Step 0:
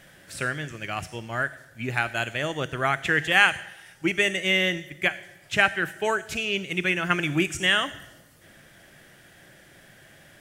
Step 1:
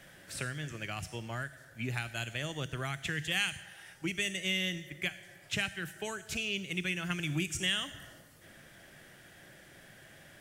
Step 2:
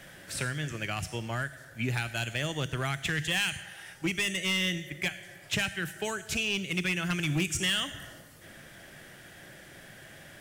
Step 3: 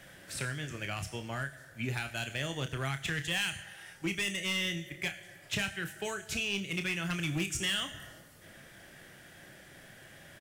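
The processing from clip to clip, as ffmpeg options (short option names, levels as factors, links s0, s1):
-filter_complex "[0:a]acrossover=split=200|3000[s0][s1][s2];[s1]acompressor=threshold=0.0158:ratio=6[s3];[s0][s3][s2]amix=inputs=3:normalize=0,volume=0.708"
-af "volume=25.1,asoftclip=hard,volume=0.0398,volume=1.88"
-filter_complex "[0:a]asplit=2[s0][s1];[s1]adelay=30,volume=0.355[s2];[s0][s2]amix=inputs=2:normalize=0,volume=0.631"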